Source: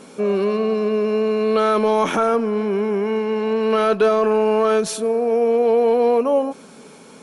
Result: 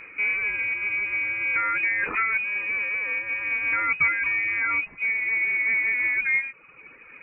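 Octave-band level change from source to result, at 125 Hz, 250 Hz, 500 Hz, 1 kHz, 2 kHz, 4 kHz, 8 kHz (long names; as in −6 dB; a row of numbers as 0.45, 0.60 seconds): can't be measured, −26.0 dB, −32.0 dB, −11.0 dB, +12.5 dB, below −15 dB, below −40 dB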